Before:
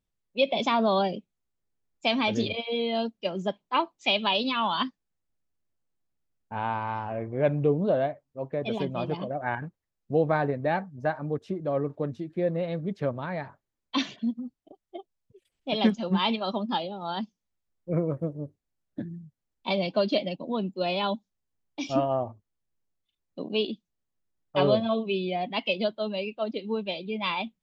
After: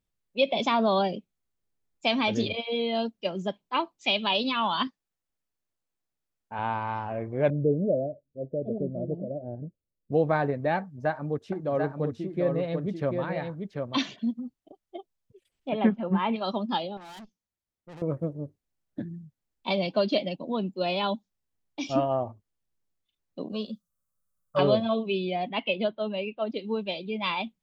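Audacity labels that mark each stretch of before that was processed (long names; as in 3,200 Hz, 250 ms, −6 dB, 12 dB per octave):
3.310000	4.300000	parametric band 880 Hz −2.5 dB 2.3 octaves
4.870000	6.590000	low-shelf EQ 280 Hz −8 dB
7.500000	10.120000	elliptic low-pass filter 610 Hz
10.780000	13.970000	single-tap delay 740 ms −4.5 dB
15.690000	16.360000	low-pass filter 2,200 Hz 24 dB per octave
16.970000	18.020000	tube saturation drive 43 dB, bias 0.7
23.520000	24.590000	drawn EQ curve 220 Hz 0 dB, 340 Hz −25 dB, 530 Hz +4 dB, 870 Hz −12 dB, 1,200 Hz +10 dB, 2,200 Hz −17 dB, 9,200 Hz +9 dB
25.490000	26.500000	low-pass filter 3,400 Hz 24 dB per octave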